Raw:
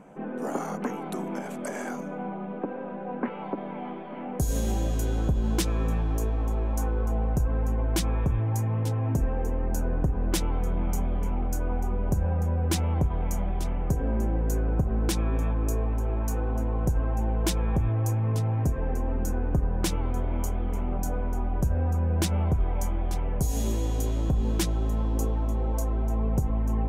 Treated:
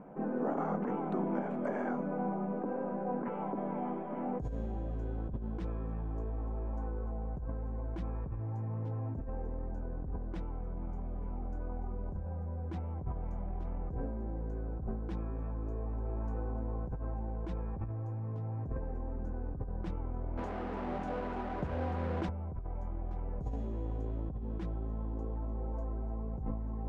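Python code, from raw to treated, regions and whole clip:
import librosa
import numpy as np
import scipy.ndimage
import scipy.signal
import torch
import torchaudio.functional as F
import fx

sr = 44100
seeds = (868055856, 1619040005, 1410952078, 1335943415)

y = fx.chain(x, sr, fx.delta_mod(bps=64000, step_db=-30.5),
    fx.highpass(hz=310.0, slope=6), at=(20.37, 22.29))
y = scipy.signal.sosfilt(scipy.signal.butter(2, 1300.0, 'lowpass', fs=sr, output='sos'), y)
y = fx.hum_notches(y, sr, base_hz=60, count=2)
y = fx.over_compress(y, sr, threshold_db=-31.0, ratio=-1.0)
y = y * 10.0 ** (-5.0 / 20.0)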